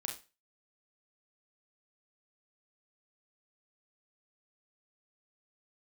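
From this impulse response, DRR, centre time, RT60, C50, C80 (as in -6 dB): 1.5 dB, 20 ms, 0.30 s, 8.5 dB, 15.5 dB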